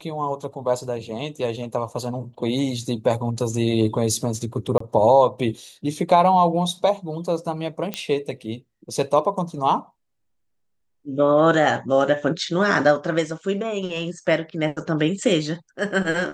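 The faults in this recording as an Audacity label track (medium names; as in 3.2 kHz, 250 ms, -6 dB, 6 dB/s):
4.780000	4.800000	dropout 24 ms
7.940000	7.940000	pop -10 dBFS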